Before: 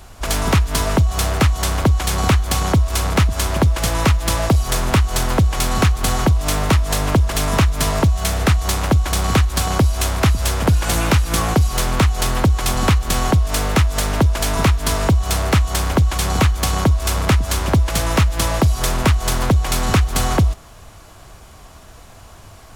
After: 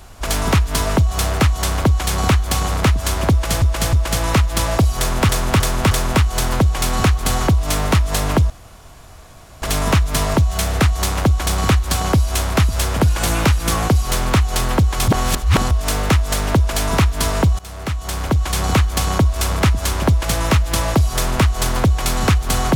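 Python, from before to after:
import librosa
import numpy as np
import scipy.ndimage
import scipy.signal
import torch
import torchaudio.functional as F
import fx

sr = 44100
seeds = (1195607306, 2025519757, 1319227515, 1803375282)

y = fx.edit(x, sr, fx.cut(start_s=2.68, length_s=0.33),
    fx.repeat(start_s=3.64, length_s=0.31, count=3),
    fx.repeat(start_s=4.69, length_s=0.31, count=4),
    fx.insert_room_tone(at_s=7.28, length_s=1.12),
    fx.reverse_span(start_s=12.74, length_s=0.63),
    fx.fade_in_from(start_s=15.25, length_s=0.99, floor_db=-20.0), tone=tone)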